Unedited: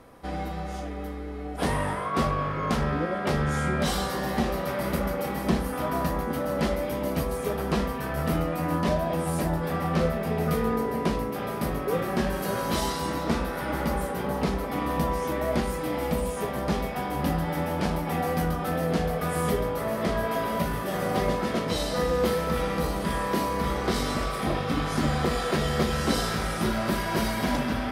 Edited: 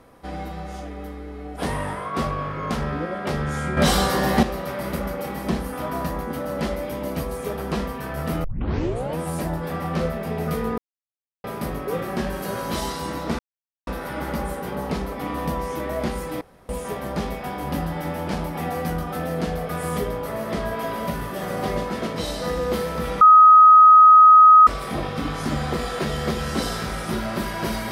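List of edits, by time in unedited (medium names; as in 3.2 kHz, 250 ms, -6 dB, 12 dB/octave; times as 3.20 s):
3.77–4.43 s: gain +8 dB
8.44 s: tape start 0.74 s
10.78–11.44 s: mute
13.39 s: insert silence 0.48 s
15.93–16.21 s: room tone
22.73–24.19 s: bleep 1.26 kHz -6.5 dBFS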